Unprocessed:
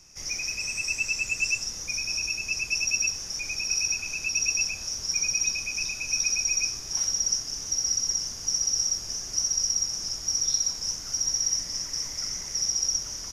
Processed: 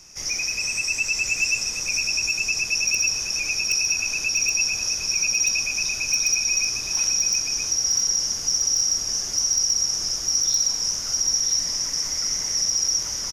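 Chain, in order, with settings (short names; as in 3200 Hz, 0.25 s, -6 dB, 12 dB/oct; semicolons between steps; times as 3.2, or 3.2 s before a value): low shelf 180 Hz -5 dB; in parallel at +1 dB: limiter -24 dBFS, peak gain reduction 11 dB; on the sum: echo 0.981 s -6.5 dB; wavefolder -13 dBFS; on a send at -15.5 dB: air absorption 480 m + reverb RT60 0.85 s, pre-delay 12 ms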